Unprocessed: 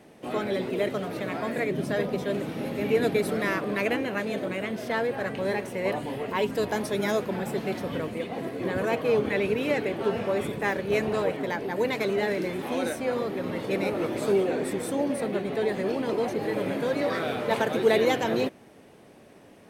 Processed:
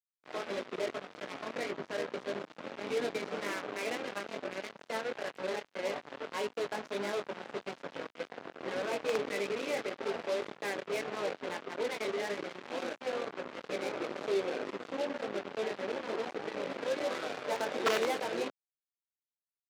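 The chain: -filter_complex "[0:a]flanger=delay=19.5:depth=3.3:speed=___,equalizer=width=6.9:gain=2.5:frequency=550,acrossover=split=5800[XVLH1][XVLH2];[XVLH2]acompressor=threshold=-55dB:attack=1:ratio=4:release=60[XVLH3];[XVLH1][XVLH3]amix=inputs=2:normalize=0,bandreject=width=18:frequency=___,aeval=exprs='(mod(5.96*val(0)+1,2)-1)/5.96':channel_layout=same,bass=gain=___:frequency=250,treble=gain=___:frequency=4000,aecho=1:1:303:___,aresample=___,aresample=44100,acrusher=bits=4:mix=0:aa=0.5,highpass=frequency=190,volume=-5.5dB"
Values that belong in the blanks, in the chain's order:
1.7, 1800, -7, -6, 0.1, 16000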